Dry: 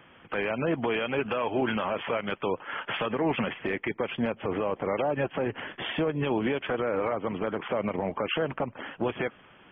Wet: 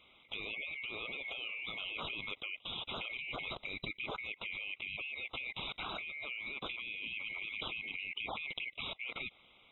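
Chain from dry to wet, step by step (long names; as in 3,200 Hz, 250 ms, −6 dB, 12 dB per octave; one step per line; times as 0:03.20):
neighbouring bands swapped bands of 2,000 Hz
output level in coarse steps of 22 dB
harmonic and percussive parts rebalanced harmonic −5 dB
level +4.5 dB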